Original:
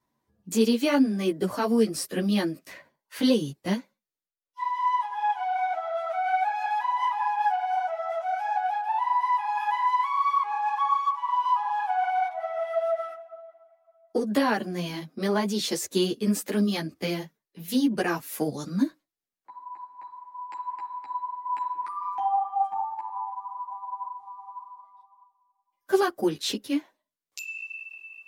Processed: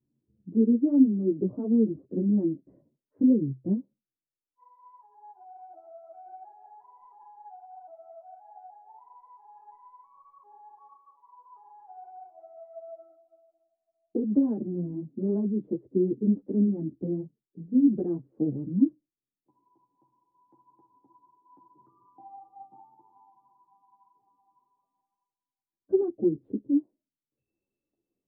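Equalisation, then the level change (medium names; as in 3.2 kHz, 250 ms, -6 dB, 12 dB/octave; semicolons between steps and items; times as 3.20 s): four-pole ladder low-pass 390 Hz, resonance 40%; peaking EQ 130 Hz +10 dB 0.2 oct; +6.0 dB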